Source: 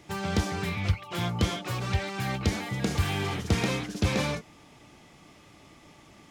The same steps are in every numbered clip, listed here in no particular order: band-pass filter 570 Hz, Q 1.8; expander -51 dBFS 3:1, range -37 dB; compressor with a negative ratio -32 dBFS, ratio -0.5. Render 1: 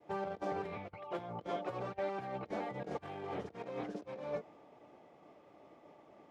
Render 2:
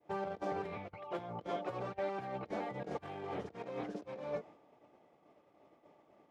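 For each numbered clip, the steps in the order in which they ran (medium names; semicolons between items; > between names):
expander > compressor with a negative ratio > band-pass filter; compressor with a negative ratio > band-pass filter > expander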